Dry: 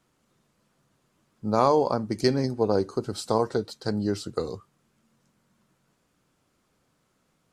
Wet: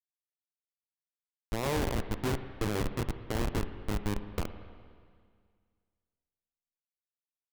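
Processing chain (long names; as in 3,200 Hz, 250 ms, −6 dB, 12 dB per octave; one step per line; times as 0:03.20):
peak hold with a decay on every bin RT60 0.63 s
comparator with hysteresis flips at −19 dBFS
spring reverb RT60 2 s, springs 46/53/58 ms, chirp 75 ms, DRR 10 dB
level −1 dB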